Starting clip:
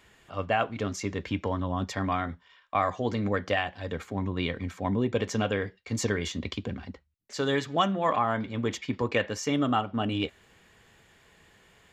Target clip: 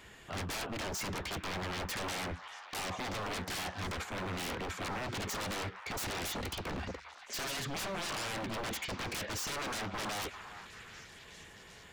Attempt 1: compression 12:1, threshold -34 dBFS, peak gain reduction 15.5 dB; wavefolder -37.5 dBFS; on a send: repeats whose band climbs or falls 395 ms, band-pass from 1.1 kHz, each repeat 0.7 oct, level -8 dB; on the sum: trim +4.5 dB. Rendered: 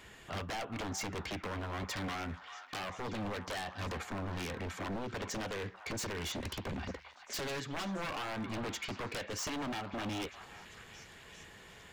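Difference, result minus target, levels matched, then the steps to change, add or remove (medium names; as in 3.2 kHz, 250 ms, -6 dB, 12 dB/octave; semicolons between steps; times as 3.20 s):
compression: peak gain reduction +8 dB
change: compression 12:1, threshold -25.5 dBFS, peak gain reduction 7.5 dB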